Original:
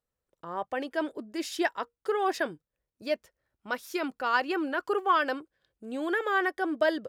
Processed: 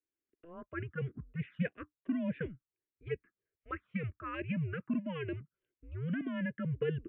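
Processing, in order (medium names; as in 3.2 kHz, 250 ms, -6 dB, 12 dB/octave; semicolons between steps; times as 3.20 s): mistuned SSB -170 Hz 250–2800 Hz; static phaser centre 2 kHz, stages 4; touch-sensitive phaser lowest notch 160 Hz, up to 1.3 kHz, full sweep at -28.5 dBFS; trim -2.5 dB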